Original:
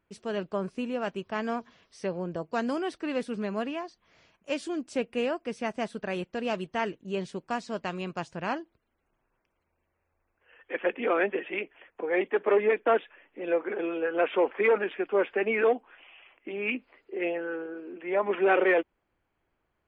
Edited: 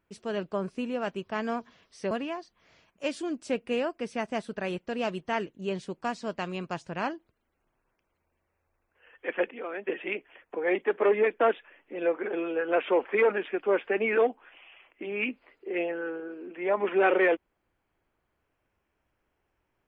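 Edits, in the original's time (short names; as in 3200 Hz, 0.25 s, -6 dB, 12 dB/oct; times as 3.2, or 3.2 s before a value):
2.11–3.57 cut
10.97–11.33 gain -11 dB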